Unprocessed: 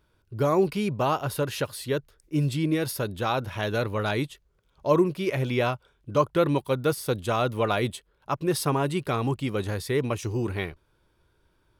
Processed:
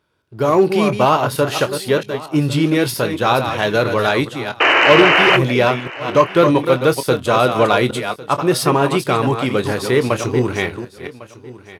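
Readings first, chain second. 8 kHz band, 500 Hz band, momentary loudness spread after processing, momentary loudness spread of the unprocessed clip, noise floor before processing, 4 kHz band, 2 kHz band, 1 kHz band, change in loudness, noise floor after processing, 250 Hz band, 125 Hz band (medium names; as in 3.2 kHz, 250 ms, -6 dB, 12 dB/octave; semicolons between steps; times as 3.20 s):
+9.0 dB, +11.0 dB, 9 LU, 8 LU, -68 dBFS, +15.0 dB, +17.0 dB, +12.5 dB, +11.0 dB, -42 dBFS, +9.5 dB, +6.5 dB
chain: chunks repeated in reverse 226 ms, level -7.5 dB; in parallel at -6.5 dB: crossover distortion -35.5 dBFS; on the sum: painted sound noise, 4.60–5.37 s, 280–3100 Hz -20 dBFS; bass shelf 200 Hz -6.5 dB; doubling 24 ms -12.5 dB; saturation -11 dBFS, distortion -19 dB; high-pass 88 Hz; treble shelf 10 kHz -8 dB; on a send: delay 1102 ms -19 dB; on the sum: level rider gain up to 6.5 dB; trim +3 dB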